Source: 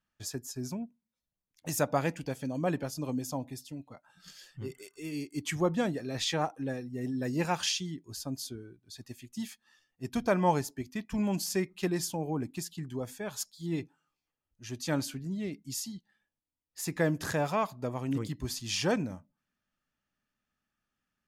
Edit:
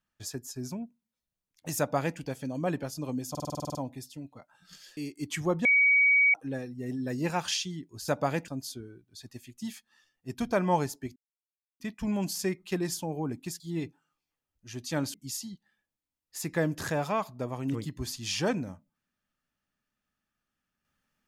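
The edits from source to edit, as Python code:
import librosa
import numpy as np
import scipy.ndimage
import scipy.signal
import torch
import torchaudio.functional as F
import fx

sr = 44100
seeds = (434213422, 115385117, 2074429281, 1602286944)

y = fx.edit(x, sr, fx.duplicate(start_s=1.79, length_s=0.4, to_s=8.23),
    fx.stutter(start_s=3.3, slice_s=0.05, count=10),
    fx.cut(start_s=4.52, length_s=0.6),
    fx.bleep(start_s=5.8, length_s=0.69, hz=2260.0, db=-18.5),
    fx.insert_silence(at_s=10.91, length_s=0.64),
    fx.cut(start_s=12.71, length_s=0.85),
    fx.cut(start_s=15.1, length_s=0.47), tone=tone)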